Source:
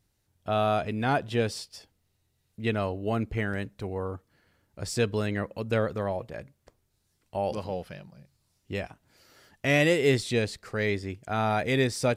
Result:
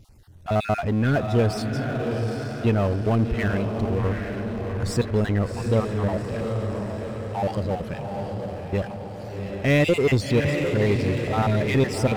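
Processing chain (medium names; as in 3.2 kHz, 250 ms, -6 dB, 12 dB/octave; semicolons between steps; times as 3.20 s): random holes in the spectrogram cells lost 32%; tilt EQ -2 dB/octave; echo that smears into a reverb 757 ms, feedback 51%, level -7 dB; power-law waveshaper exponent 0.7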